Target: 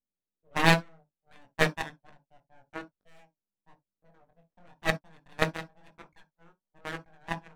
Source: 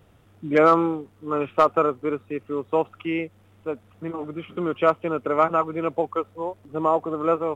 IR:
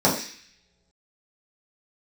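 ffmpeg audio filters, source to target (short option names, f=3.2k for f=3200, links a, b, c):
-filter_complex "[0:a]aeval=exprs='abs(val(0))':c=same,adynamicsmooth=sensitivity=6:basefreq=1k,flanger=delay=20:depth=4.3:speed=1,aeval=exprs='0.422*(cos(1*acos(clip(val(0)/0.422,-1,1)))-cos(1*PI/2))+0.133*(cos(3*acos(clip(val(0)/0.422,-1,1)))-cos(3*PI/2))+0.0335*(cos(4*acos(clip(val(0)/0.422,-1,1)))-cos(4*PI/2))+0.00266*(cos(6*acos(clip(val(0)/0.422,-1,1)))-cos(6*PI/2))+0.00266*(cos(7*acos(clip(val(0)/0.422,-1,1)))-cos(7*PI/2))':c=same,asplit=2[a][b];[1:a]atrim=start_sample=2205,atrim=end_sample=3087[c];[b][c]afir=irnorm=-1:irlink=0,volume=-26.5dB[d];[a][d]amix=inputs=2:normalize=0,volume=4dB"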